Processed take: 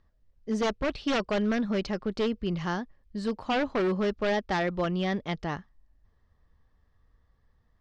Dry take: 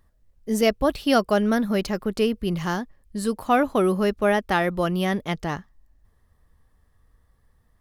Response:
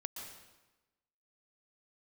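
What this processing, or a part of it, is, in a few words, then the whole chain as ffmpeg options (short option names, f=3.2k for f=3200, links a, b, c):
synthesiser wavefolder: -af "aeval=exprs='0.158*(abs(mod(val(0)/0.158+3,4)-2)-1)':c=same,lowpass=f=5.6k:w=0.5412,lowpass=f=5.6k:w=1.3066,volume=-4.5dB"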